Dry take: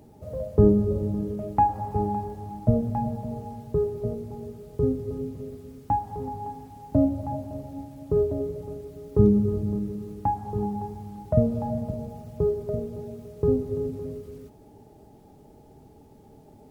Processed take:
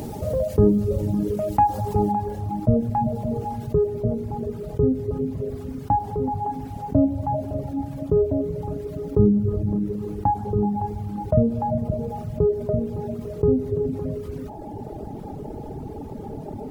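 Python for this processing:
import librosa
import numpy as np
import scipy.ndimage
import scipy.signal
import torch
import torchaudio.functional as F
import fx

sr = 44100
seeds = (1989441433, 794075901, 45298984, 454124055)

y = fx.dereverb_blind(x, sr, rt60_s=1.3)
y = fx.high_shelf(y, sr, hz=2300.0, db=fx.steps((0.0, 4.5), (2.11, -7.0), (3.85, -12.0)))
y = fx.env_flatten(y, sr, amount_pct=50)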